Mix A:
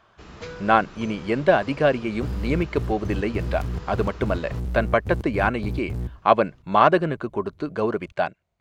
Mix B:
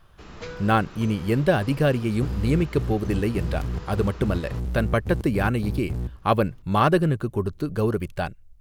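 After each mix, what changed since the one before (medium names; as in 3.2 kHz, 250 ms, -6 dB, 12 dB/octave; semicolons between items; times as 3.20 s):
speech: remove cabinet simulation 210–6500 Hz, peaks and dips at 660 Hz +8 dB, 1 kHz +6 dB, 1.5 kHz +3 dB, 2.2 kHz +5 dB, 5.4 kHz -6 dB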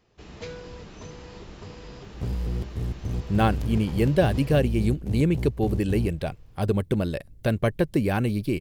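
speech: entry +2.70 s; master: add peaking EQ 1.3 kHz -7.5 dB 0.77 oct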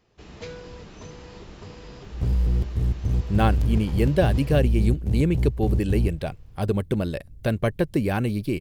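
second sound: add bass shelf 110 Hz +10 dB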